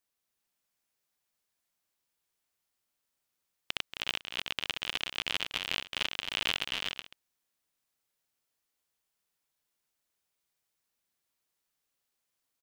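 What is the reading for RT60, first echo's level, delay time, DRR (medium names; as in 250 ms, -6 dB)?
no reverb, -11.0 dB, 232 ms, no reverb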